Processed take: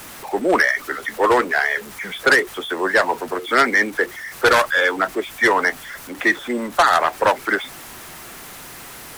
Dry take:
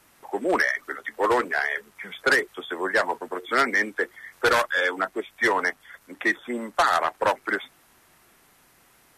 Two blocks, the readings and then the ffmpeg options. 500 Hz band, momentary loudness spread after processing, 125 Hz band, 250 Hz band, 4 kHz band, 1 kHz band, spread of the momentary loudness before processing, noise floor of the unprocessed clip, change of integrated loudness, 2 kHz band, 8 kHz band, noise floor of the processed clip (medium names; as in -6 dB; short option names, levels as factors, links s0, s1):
+6.0 dB, 20 LU, +7.5 dB, +6.5 dB, +6.5 dB, +6.0 dB, 10 LU, -59 dBFS, +6.0 dB, +6.0 dB, +8.0 dB, -38 dBFS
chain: -af "aeval=exprs='val(0)+0.5*0.0119*sgn(val(0))':c=same,volume=1.88"